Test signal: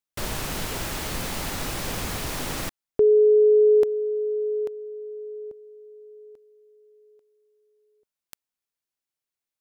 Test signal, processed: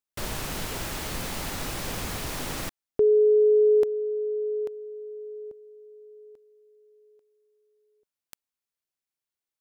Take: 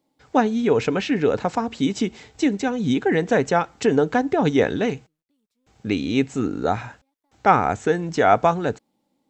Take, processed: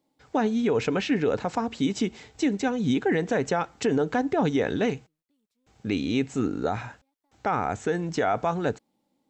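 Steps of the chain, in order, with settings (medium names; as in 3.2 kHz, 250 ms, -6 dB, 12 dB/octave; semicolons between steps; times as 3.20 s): peak limiter -12.5 dBFS; trim -2.5 dB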